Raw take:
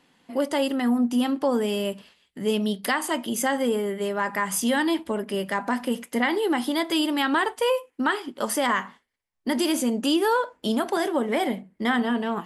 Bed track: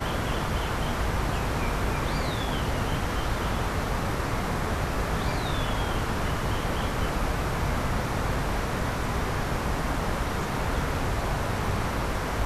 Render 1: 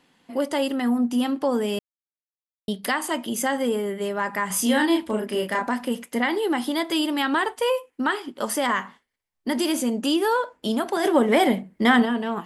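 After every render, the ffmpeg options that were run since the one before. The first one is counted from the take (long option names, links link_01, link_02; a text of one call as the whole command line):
ffmpeg -i in.wav -filter_complex "[0:a]asettb=1/sr,asplit=3[link_01][link_02][link_03];[link_01]atrim=end=4.474[link_04];[link_02]atrim=start=4.47:end=5.67,asetpts=PTS-STARTPTS,afade=type=in:duration=0.004:curve=qsin,afade=type=out:start_time=1.196:duration=0.004:curve=qsin,asplit=2[link_05][link_06];[link_06]adelay=33,volume=-2.5dB[link_07];[link_05][link_07]amix=inputs=2:normalize=0,atrim=end_sample=52920[link_08];[link_03]atrim=start=5.666[link_09];[link_04][link_08]acrossfade=duration=0.004:curve1=hsin:curve2=qsin[link_10];[link_10][link_09]acrossfade=duration=0.004:curve1=qsin:curve2=hsin,asplit=3[link_11][link_12][link_13];[link_11]afade=type=out:start_time=11.03:duration=0.02[link_14];[link_12]acontrast=60,afade=type=in:start_time=11.03:duration=0.02,afade=type=out:start_time=12.04:duration=0.02[link_15];[link_13]afade=type=in:start_time=12.04:duration=0.02[link_16];[link_14][link_15][link_16]amix=inputs=3:normalize=0,asplit=3[link_17][link_18][link_19];[link_17]atrim=end=1.79,asetpts=PTS-STARTPTS,afade=type=out:start_time=1.786:duration=0.004:curve=hsin[link_20];[link_18]atrim=start=1.79:end=2.68,asetpts=PTS-STARTPTS,volume=0[link_21];[link_19]atrim=start=2.68,asetpts=PTS-STARTPTS,afade=type=in:duration=0.004:curve=hsin[link_22];[link_20][link_21][link_22]concat=n=3:v=0:a=1" out.wav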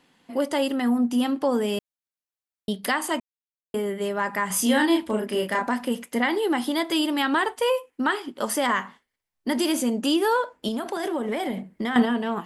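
ffmpeg -i in.wav -filter_complex "[0:a]asettb=1/sr,asplit=3[link_01][link_02][link_03];[link_01]atrim=end=10.684[link_04];[link_02]atrim=start=10.68:end=11.96,asetpts=PTS-STARTPTS,afade=type=in:duration=0.004:curve=qsin,afade=type=out:start_time=1.276:duration=0.004:curve=qsin,acompressor=threshold=-24dB:ratio=6:attack=3.2:release=140:knee=1:detection=peak[link_05];[link_03]atrim=start=11.956[link_06];[link_04][link_05]acrossfade=duration=0.004:curve1=hsin:curve2=qsin[link_07];[link_07][link_06]acrossfade=duration=0.004:curve1=qsin:curve2=hsin,asplit=3[link_08][link_09][link_10];[link_08]atrim=end=3.2,asetpts=PTS-STARTPTS,afade=type=out:start_time=3.196:duration=0.004:curve=hsin[link_11];[link_09]atrim=start=3.2:end=3.74,asetpts=PTS-STARTPTS,volume=0[link_12];[link_10]atrim=start=3.74,asetpts=PTS-STARTPTS,afade=type=in:duration=0.004:curve=hsin[link_13];[link_11][link_12][link_13]concat=n=3:v=0:a=1" out.wav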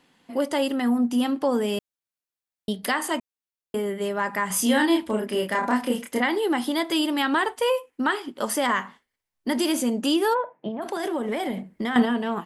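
ffmpeg -i in.wav -filter_complex "[0:a]asettb=1/sr,asplit=3[link_01][link_02][link_03];[link_01]atrim=end=2.724[link_04];[link_02]atrim=start=2.72:end=3.14,asetpts=PTS-STARTPTS,afade=type=in:duration=0.004:curve=qsin,afade=type=out:start_time=0.416:duration=0.004:curve=qsin,bandreject=frequency=90.17:width_type=h:width=4,bandreject=frequency=180.34:width_type=h:width=4,bandreject=frequency=270.51:width_type=h:width=4,bandreject=frequency=360.68:width_type=h:width=4,bandreject=frequency=450.85:width_type=h:width=4,bandreject=frequency=541.02:width_type=h:width=4,bandreject=frequency=631.19:width_type=h:width=4,bandreject=frequency=721.36:width_type=h:width=4,bandreject=frequency=811.53:width_type=h:width=4,bandreject=frequency=901.7:width_type=h:width=4,bandreject=frequency=991.87:width_type=h:width=4,bandreject=frequency=1082.04:width_type=h:width=4,bandreject=frequency=1172.21:width_type=h:width=4,bandreject=frequency=1262.38:width_type=h:width=4,bandreject=frequency=1352.55:width_type=h:width=4,bandreject=frequency=1442.72:width_type=h:width=4,bandreject=frequency=1532.89:width_type=h:width=4,bandreject=frequency=1623.06:width_type=h:width=4,bandreject=frequency=1713.23:width_type=h:width=4,bandreject=frequency=1803.4:width_type=h:width=4,bandreject=frequency=1893.57:width_type=h:width=4,bandreject=frequency=1983.74:width_type=h:width=4,bandreject=frequency=2073.91:width_type=h:width=4[link_05];[link_03]atrim=start=3.136[link_06];[link_04][link_05]acrossfade=duration=0.004:curve1=hsin:curve2=qsin[link_07];[link_07][link_06]acrossfade=duration=0.004:curve1=qsin:curve2=hsin,asplit=3[link_08][link_09][link_10];[link_08]afade=type=out:start_time=5.62:duration=0.02[link_11];[link_09]asplit=2[link_12][link_13];[link_13]adelay=28,volume=-2dB[link_14];[link_12][link_14]amix=inputs=2:normalize=0,afade=type=in:start_time=5.62:duration=0.02,afade=type=out:start_time=6.19:duration=0.02[link_15];[link_10]afade=type=in:start_time=6.19:duration=0.02[link_16];[link_11][link_15][link_16]amix=inputs=3:normalize=0,asplit=3[link_17][link_18][link_19];[link_17]afade=type=out:start_time=10.33:duration=0.02[link_20];[link_18]highpass=frequency=140:width=0.5412,highpass=frequency=140:width=1.3066,equalizer=frequency=150:width_type=q:width=4:gain=7,equalizer=frequency=250:width_type=q:width=4:gain=-8,equalizer=frequency=450:width_type=q:width=4:gain=-3,equalizer=frequency=720:width_type=q:width=4:gain=5,equalizer=frequency=1400:width_type=q:width=4:gain=-10,lowpass=frequency=2100:width=0.5412,lowpass=frequency=2100:width=1.3066,afade=type=in:start_time=10.33:duration=0.02,afade=type=out:start_time=10.81:duration=0.02[link_21];[link_19]afade=type=in:start_time=10.81:duration=0.02[link_22];[link_20][link_21][link_22]amix=inputs=3:normalize=0" out.wav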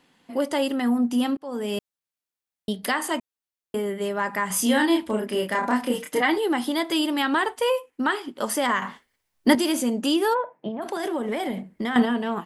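ffmpeg -i in.wav -filter_complex "[0:a]asettb=1/sr,asplit=3[link_01][link_02][link_03];[link_01]atrim=end=5.934[link_04];[link_02]atrim=start=5.93:end=6.38,asetpts=PTS-STARTPTS,afade=type=in:duration=0.004:curve=qsin,afade=type=out:start_time=0.446:duration=0.004:curve=qsin,aecho=1:1:6.5:0.8,atrim=end_sample=19845[link_05];[link_03]atrim=start=6.376[link_06];[link_04][link_05]acrossfade=duration=0.004:curve1=hsin:curve2=qsin[link_07];[link_07][link_06]acrossfade=duration=0.004:curve1=qsin:curve2=hsin,asplit=4[link_08][link_09][link_10][link_11];[link_08]atrim=end=1.37,asetpts=PTS-STARTPTS,afade=type=out:start_time=1.366:duration=0.004:curve=hsin[link_12];[link_09]atrim=start=1.37:end=8.822,asetpts=PTS-STARTPTS,afade=type=in:duration=0.41[link_13];[link_10]atrim=start=8.818:end=9.552,asetpts=PTS-STARTPTS,volume=8.5dB[link_14];[link_11]atrim=start=9.548[link_15];[link_12][link_13]concat=n=2:v=0:a=1[link_16];[link_16][link_14]acrossfade=duration=0.004:curve1=hsin:curve2=hsin[link_17];[link_17][link_15]acrossfade=duration=0.004:curve1=hsin:curve2=hsin" out.wav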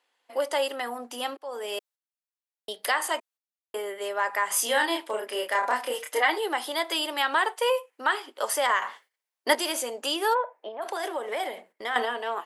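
ffmpeg -i in.wav -af "highpass=frequency=470:width=0.5412,highpass=frequency=470:width=1.3066,agate=range=-10dB:threshold=-54dB:ratio=16:detection=peak" out.wav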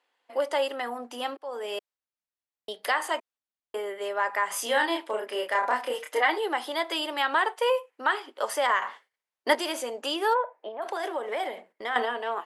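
ffmpeg -i in.wav -af "aemphasis=mode=reproduction:type=cd" out.wav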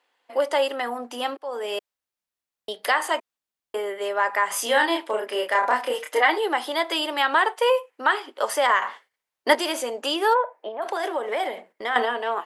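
ffmpeg -i in.wav -af "volume=4.5dB" out.wav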